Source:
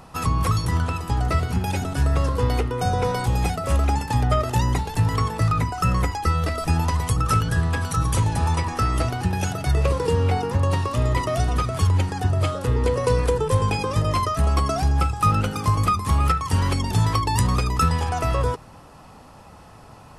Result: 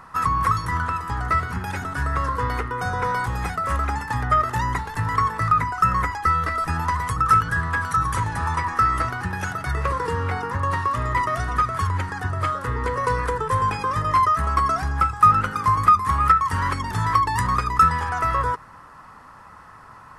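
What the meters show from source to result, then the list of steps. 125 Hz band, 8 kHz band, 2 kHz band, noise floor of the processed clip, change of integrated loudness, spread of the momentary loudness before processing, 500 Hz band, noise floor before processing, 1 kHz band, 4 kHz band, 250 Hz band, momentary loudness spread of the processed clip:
-6.0 dB, -6.0 dB, +5.5 dB, -45 dBFS, +0.5 dB, 3 LU, -6.0 dB, -46 dBFS, +6.0 dB, -6.0 dB, -6.0 dB, 8 LU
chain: band shelf 1400 Hz +13.5 dB 1.3 oct; gain -6 dB

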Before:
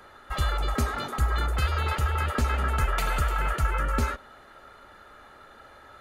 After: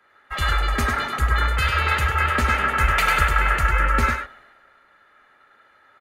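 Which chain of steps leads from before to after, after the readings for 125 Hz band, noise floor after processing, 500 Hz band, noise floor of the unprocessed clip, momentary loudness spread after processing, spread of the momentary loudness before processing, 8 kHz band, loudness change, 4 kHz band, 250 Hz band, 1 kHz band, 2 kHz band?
+3.0 dB, -58 dBFS, +3.5 dB, -51 dBFS, 5 LU, 3 LU, +5.0 dB, +7.0 dB, +8.0 dB, +3.0 dB, +8.0 dB, +12.0 dB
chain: bell 2000 Hz +10.5 dB 1.3 oct; on a send: echo 0.1 s -4.5 dB; on the sum: three-band expander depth 70%; gain +2 dB

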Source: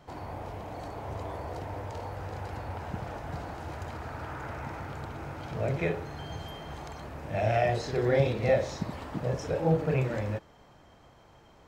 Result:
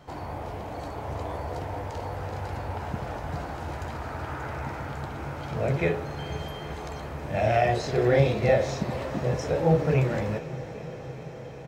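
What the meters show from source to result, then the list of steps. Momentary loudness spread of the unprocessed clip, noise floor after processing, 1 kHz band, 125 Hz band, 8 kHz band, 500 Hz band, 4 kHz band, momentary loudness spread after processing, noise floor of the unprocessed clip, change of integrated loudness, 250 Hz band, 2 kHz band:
14 LU, -39 dBFS, +4.5 dB, +4.0 dB, +4.5 dB, +4.0 dB, +4.0 dB, 14 LU, -57 dBFS, +4.0 dB, +4.0 dB, +4.0 dB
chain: doubler 14 ms -10.5 dB; diffused feedback echo 0.476 s, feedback 76%, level -15 dB; gain +3.5 dB

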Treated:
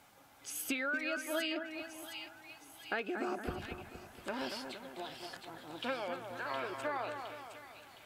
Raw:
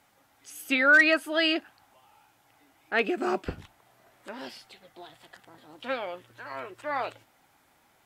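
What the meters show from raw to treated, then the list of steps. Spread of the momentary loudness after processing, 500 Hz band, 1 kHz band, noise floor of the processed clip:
14 LU, -8.5 dB, -7.5 dB, -60 dBFS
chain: notch 1900 Hz, Q 14; compressor 16:1, threshold -36 dBFS, peak gain reduction 21.5 dB; split-band echo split 2100 Hz, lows 0.233 s, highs 0.714 s, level -6.5 dB; gain +2.5 dB

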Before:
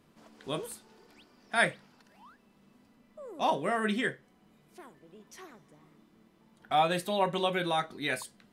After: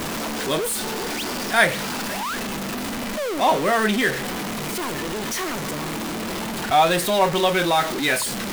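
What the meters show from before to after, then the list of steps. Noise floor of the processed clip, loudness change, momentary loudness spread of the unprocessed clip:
-28 dBFS, +8.0 dB, 19 LU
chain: zero-crossing step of -28.5 dBFS; bell 100 Hz -4.5 dB 2.3 oct; gain +7.5 dB

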